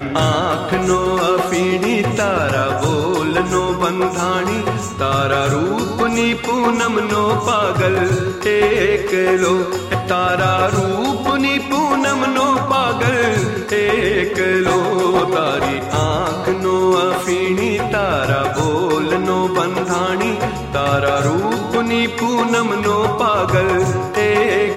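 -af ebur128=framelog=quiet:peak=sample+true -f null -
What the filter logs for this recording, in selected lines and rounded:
Integrated loudness:
  I:         -16.5 LUFS
  Threshold: -26.5 LUFS
Loudness range:
  LRA:         1.5 LU
  Threshold: -36.6 LUFS
  LRA low:   -17.4 LUFS
  LRA high:  -15.8 LUFS
Sample peak:
  Peak:       -2.0 dBFS
True peak:
  Peak:       -2.0 dBFS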